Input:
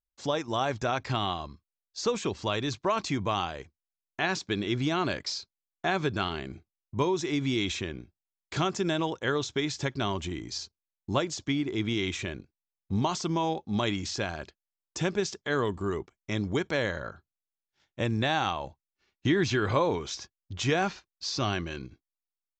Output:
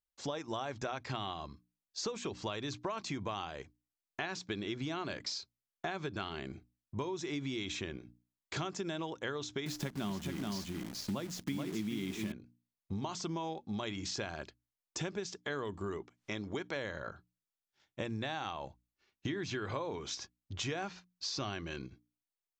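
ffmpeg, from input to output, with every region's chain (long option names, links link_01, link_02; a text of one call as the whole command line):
ffmpeg -i in.wav -filter_complex "[0:a]asettb=1/sr,asplit=3[link_01][link_02][link_03];[link_01]atrim=end=9.664[link_04];[link_02]atrim=start=9.66:end=12.32,asetpts=PTS-STARTPTS,afade=type=in:duration=0.004:curve=qsin,afade=type=out:start_time=2.656:duration=0.004:curve=qsin,equalizer=frequency=200:width_type=o:width=0.75:gain=14,acrusher=bits=7:dc=4:mix=0:aa=0.000001,aecho=1:1:429:0.531,atrim=end_sample=117306[link_05];[link_03]atrim=start=12.316[link_06];[link_04][link_05]acrossfade=duration=0.004:curve1=hsin:curve2=qsin[link_07];[link_07][link_06]acrossfade=duration=0.004:curve1=qsin:curve2=hsin,asettb=1/sr,asplit=3[link_08][link_09][link_10];[link_08]atrim=end=15.974[link_11];[link_09]atrim=start=15.97:end=16.76,asetpts=PTS-STARTPTS,afade=type=in:duration=0.004:curve=qsin,afade=type=out:start_time=0.786:duration=0.004:curve=qsin,lowshelf=frequency=200:gain=-7.5,acompressor=mode=upward:threshold=-52dB:ratio=2.5:attack=3.2:release=140:knee=2.83:detection=peak,lowpass=6900[link_12];[link_10]atrim=start=16.756[link_13];[link_11][link_12]acrossfade=duration=0.004:curve1=hsin:curve2=qsin[link_14];[link_14][link_13]acrossfade=duration=0.004:curve1=qsin:curve2=hsin,lowshelf=frequency=64:gain=-6.5,bandreject=frequency=60:width_type=h:width=6,bandreject=frequency=120:width_type=h:width=6,bandreject=frequency=180:width_type=h:width=6,bandreject=frequency=240:width_type=h:width=6,bandreject=frequency=300:width_type=h:width=6,acompressor=threshold=-33dB:ratio=6,volume=-2dB" out.wav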